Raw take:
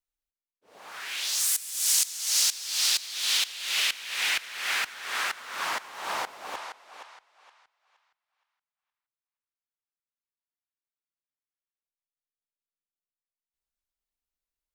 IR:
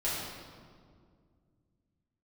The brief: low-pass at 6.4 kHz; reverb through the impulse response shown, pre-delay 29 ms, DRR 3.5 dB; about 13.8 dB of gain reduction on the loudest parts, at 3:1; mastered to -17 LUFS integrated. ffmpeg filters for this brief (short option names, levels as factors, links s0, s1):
-filter_complex "[0:a]lowpass=6400,acompressor=threshold=0.00794:ratio=3,asplit=2[s0][s1];[1:a]atrim=start_sample=2205,adelay=29[s2];[s1][s2]afir=irnorm=-1:irlink=0,volume=0.282[s3];[s0][s3]amix=inputs=2:normalize=0,volume=11.9"